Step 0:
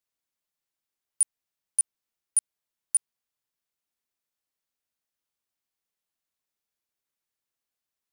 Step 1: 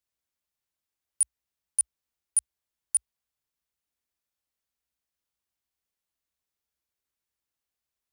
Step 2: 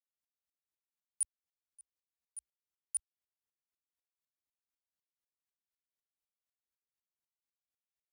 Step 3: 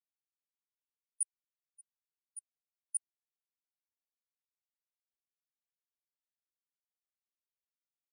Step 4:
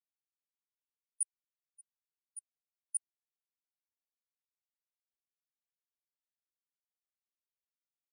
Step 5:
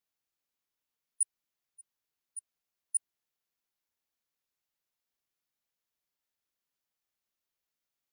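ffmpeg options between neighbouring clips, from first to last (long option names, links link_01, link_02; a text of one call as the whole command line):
ffmpeg -i in.wav -af "equalizer=frequency=61:width=1.5:gain=12.5,volume=-1dB" out.wav
ffmpeg -i in.wav -af "aeval=exprs='val(0)*pow(10,-37*if(lt(mod(-4*n/s,1),2*abs(-4)/1000),1-mod(-4*n/s,1)/(2*abs(-4)/1000),(mod(-4*n/s,1)-2*abs(-4)/1000)/(1-2*abs(-4)/1000))/20)':channel_layout=same,volume=-5dB" out.wav
ffmpeg -i in.wav -af "afftfilt=real='re*gte(hypot(re,im),0.00562)':imag='im*gte(hypot(re,im),0.00562)':win_size=1024:overlap=0.75" out.wav
ffmpeg -i in.wav -af anull out.wav
ffmpeg -i in.wav -af "equalizer=frequency=8700:width=5.1:gain=-7,volume=7dB" out.wav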